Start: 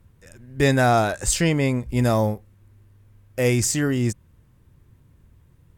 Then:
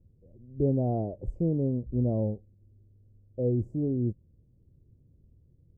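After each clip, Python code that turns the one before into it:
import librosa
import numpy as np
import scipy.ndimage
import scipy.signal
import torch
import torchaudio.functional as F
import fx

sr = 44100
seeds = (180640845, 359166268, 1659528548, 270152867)

y = scipy.signal.sosfilt(scipy.signal.cheby2(4, 50, 1400.0, 'lowpass', fs=sr, output='sos'), x)
y = y * 10.0 ** (-6.0 / 20.0)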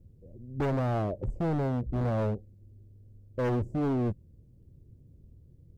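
y = np.clip(10.0 ** (31.5 / 20.0) * x, -1.0, 1.0) / 10.0 ** (31.5 / 20.0)
y = y * 10.0 ** (5.5 / 20.0)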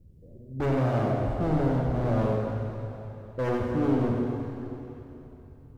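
y = x + 10.0 ** (-6.5 / 20.0) * np.pad(x, (int(94 * sr / 1000.0), 0))[:len(x)]
y = fx.rev_plate(y, sr, seeds[0], rt60_s=3.3, hf_ratio=0.95, predelay_ms=0, drr_db=-0.5)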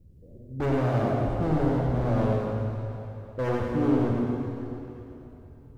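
y = x + 10.0 ** (-6.5 / 20.0) * np.pad(x, (int(111 * sr / 1000.0), 0))[:len(x)]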